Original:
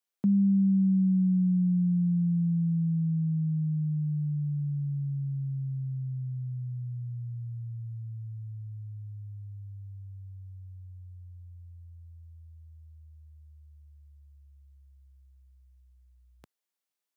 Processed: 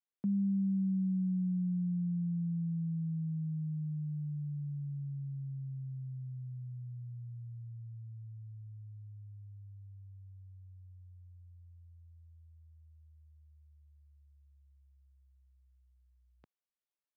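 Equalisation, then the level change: distance through air 220 m; -8.0 dB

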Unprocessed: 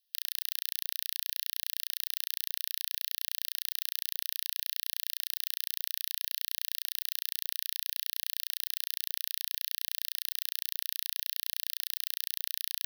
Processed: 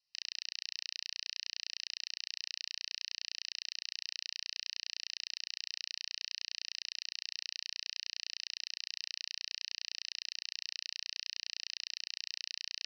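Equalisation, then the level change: steep low-pass 6 kHz 96 dB/octave; dynamic bell 3.2 kHz, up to +4 dB, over -53 dBFS, Q 2.1; static phaser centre 2.3 kHz, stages 8; +2.5 dB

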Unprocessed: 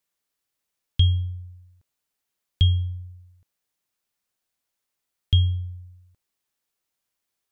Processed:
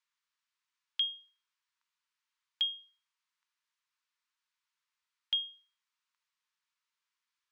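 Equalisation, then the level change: brick-wall FIR high-pass 880 Hz; distance through air 100 m; 0.0 dB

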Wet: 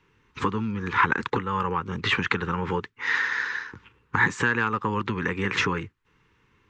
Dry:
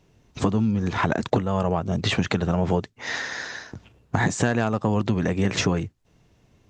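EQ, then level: Butterworth band-stop 660 Hz, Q 1.3; three-band isolator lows -15 dB, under 570 Hz, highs -18 dB, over 2.7 kHz; +7.5 dB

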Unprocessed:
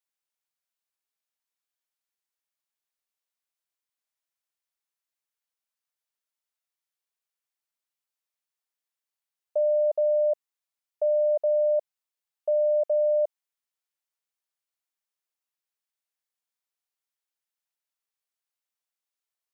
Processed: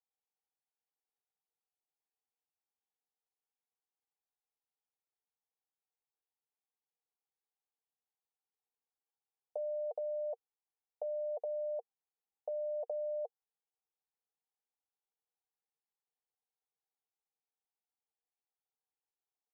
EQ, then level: two resonant band-passes 600 Hz, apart 0.73 oct; +4.0 dB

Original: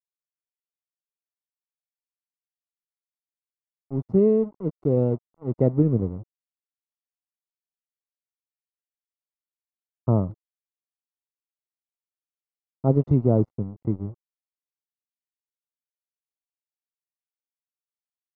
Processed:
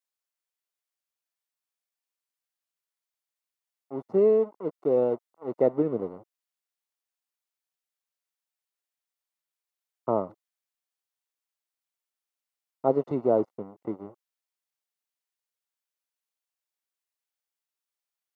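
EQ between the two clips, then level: high-pass 520 Hz 12 dB/octave; +5.0 dB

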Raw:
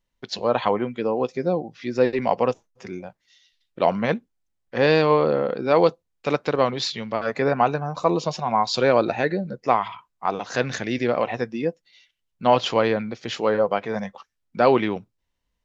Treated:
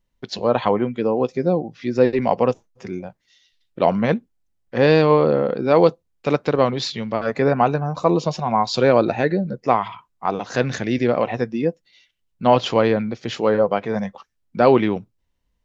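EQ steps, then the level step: bass shelf 480 Hz +6.5 dB; 0.0 dB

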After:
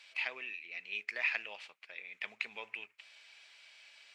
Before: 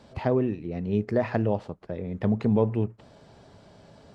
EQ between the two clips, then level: resonant high-pass 2.4 kHz, resonance Q 5.3; 0.0 dB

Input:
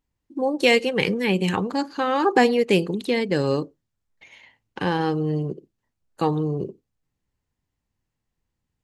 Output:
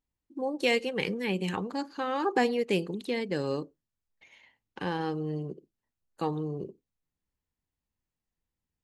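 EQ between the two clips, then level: peaking EQ 120 Hz -6.5 dB 0.32 oct; -8.5 dB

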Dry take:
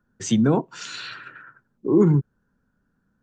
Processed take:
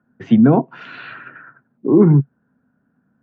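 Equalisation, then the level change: cabinet simulation 110–2500 Hz, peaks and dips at 140 Hz +5 dB, 250 Hz +8 dB, 690 Hz +8 dB; +3.5 dB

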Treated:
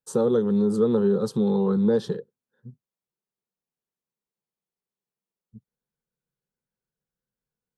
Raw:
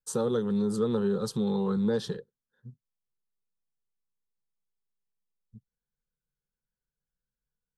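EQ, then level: high-pass 560 Hz 6 dB/octave; tilt shelf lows +9.5 dB, about 720 Hz; +7.0 dB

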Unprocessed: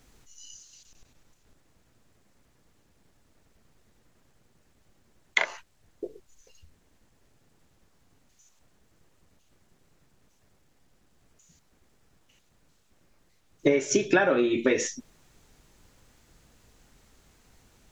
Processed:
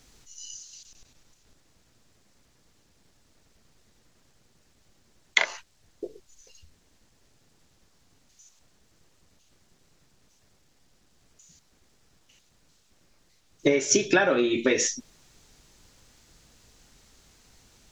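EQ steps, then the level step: peaking EQ 5.1 kHz +7.5 dB 1.6 oct; 0.0 dB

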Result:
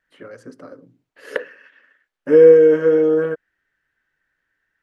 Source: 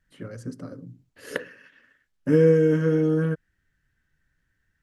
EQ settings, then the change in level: tone controls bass -6 dB, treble -15 dB; dynamic bell 480 Hz, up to +7 dB, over -33 dBFS, Q 1.1; tone controls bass -14 dB, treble +4 dB; +5.0 dB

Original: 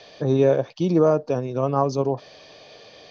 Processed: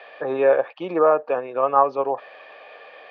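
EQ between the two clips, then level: cabinet simulation 480–2900 Hz, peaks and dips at 520 Hz +5 dB, 810 Hz +7 dB, 1.2 kHz +9 dB, 1.7 kHz +9 dB, 2.5 kHz +6 dB; 0.0 dB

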